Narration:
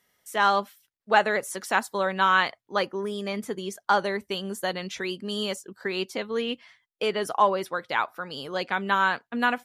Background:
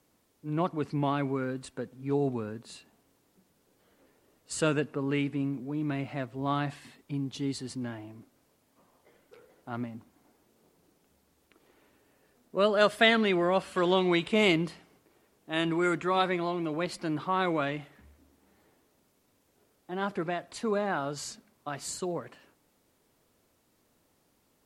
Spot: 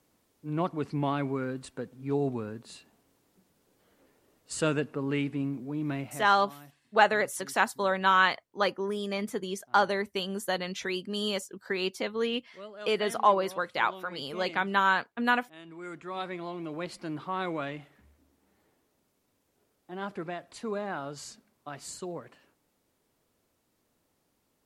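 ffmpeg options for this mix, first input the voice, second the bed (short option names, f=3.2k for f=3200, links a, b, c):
-filter_complex "[0:a]adelay=5850,volume=-1.5dB[a];[1:a]volume=15dB,afade=t=out:st=5.95:d=0.38:silence=0.105925,afade=t=in:st=15.66:d=1.11:silence=0.16788[b];[a][b]amix=inputs=2:normalize=0"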